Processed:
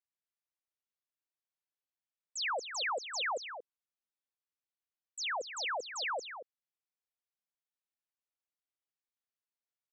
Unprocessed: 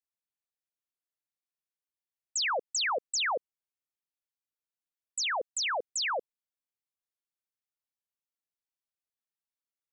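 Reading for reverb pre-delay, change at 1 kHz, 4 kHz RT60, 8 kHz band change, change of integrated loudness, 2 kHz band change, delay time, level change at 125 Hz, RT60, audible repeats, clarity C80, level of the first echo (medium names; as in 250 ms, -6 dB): no reverb, -4.0 dB, no reverb, -9.5 dB, -5.5 dB, -4.0 dB, 230 ms, no reading, no reverb, 1, no reverb, -10.0 dB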